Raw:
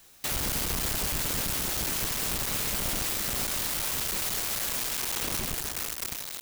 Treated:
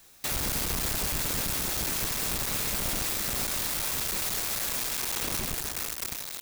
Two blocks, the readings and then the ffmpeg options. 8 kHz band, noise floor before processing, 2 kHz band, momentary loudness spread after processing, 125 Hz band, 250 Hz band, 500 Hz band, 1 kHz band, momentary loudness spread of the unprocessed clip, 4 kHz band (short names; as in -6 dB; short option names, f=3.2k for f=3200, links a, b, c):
0.0 dB, -39 dBFS, 0.0 dB, 3 LU, 0.0 dB, 0.0 dB, 0.0 dB, 0.0 dB, 3 LU, -0.5 dB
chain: -af "bandreject=f=3k:w=23"